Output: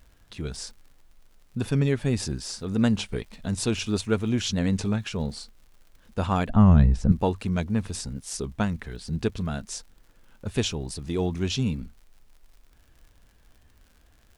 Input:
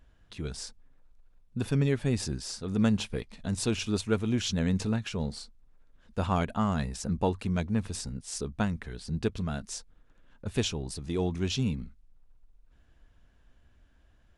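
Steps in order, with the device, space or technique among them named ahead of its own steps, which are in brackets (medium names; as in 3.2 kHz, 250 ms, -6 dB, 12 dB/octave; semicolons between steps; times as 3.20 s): warped LP (warped record 33 1/3 rpm, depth 100 cents; crackle 90 per s -49 dBFS; pink noise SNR 41 dB); 6.49–7.12 s: RIAA curve playback; trim +3 dB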